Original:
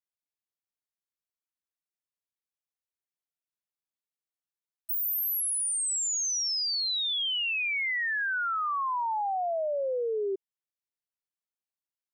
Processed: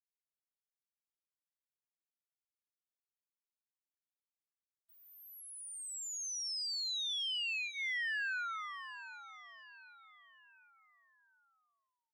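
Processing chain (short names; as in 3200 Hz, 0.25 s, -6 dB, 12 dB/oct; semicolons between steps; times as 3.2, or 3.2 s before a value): spectral gate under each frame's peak -30 dB strong; steep high-pass 1500 Hz 36 dB/oct; bell 4900 Hz +2.5 dB 0.72 oct; notch 2300 Hz, Q 6.5; compressor 10:1, threshold -30 dBFS, peak gain reduction 4.5 dB; requantised 12-bit, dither none; air absorption 81 m; on a send: feedback echo 0.749 s, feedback 42%, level -13 dB; on the sum: gain -3.5 dB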